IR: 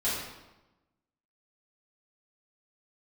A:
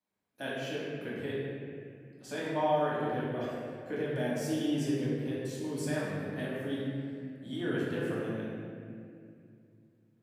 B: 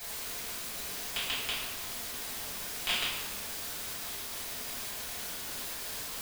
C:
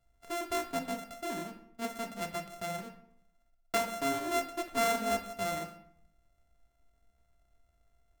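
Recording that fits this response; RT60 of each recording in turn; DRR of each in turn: B; 2.4, 1.0, 0.65 s; -8.5, -10.5, 5.0 dB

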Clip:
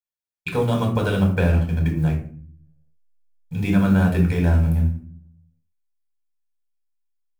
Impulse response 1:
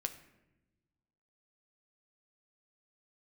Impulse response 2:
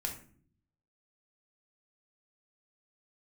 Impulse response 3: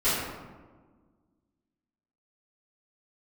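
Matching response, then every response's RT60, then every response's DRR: 2; 1.0, 0.50, 1.4 s; 6.0, 0.5, -16.0 dB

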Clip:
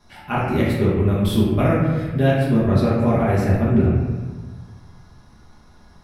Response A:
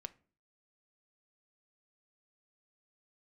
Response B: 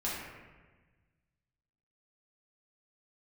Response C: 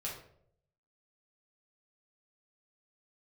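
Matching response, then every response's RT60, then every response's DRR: B; 0.40, 1.3, 0.65 s; 10.0, -8.5, -5.0 dB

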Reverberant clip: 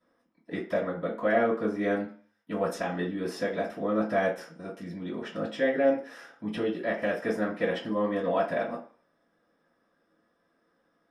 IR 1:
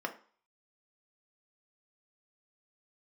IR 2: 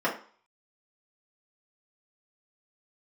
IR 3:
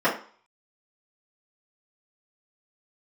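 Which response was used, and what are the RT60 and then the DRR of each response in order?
3; 0.45, 0.45, 0.45 s; 3.0, -7.0, -11.5 dB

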